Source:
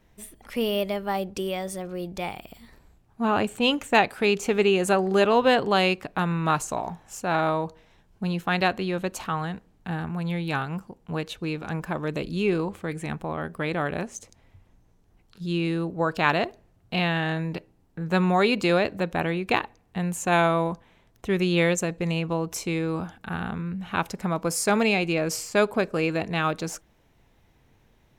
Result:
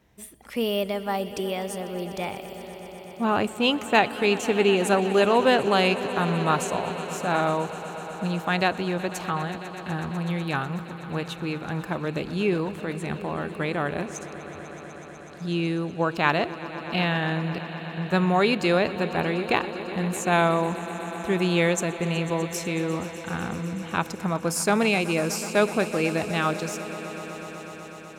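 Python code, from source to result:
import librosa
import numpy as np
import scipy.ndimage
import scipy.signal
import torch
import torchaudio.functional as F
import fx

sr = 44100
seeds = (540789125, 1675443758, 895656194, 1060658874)

p1 = scipy.signal.sosfilt(scipy.signal.butter(2, 60.0, 'highpass', fs=sr, output='sos'), x)
y = p1 + fx.echo_swell(p1, sr, ms=124, loudest=5, wet_db=-18.0, dry=0)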